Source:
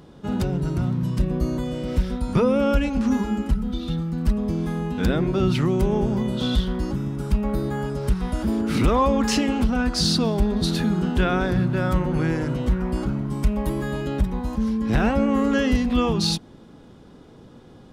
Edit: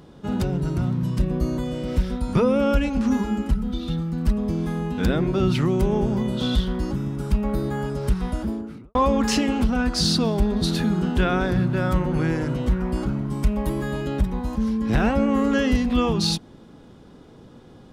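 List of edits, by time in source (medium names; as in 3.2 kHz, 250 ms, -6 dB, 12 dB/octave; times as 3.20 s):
8.19–8.95 s: studio fade out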